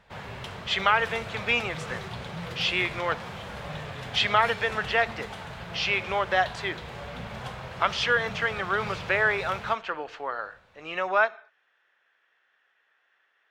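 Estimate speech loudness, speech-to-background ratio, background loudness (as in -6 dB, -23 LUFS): -26.5 LUFS, 11.5 dB, -38.0 LUFS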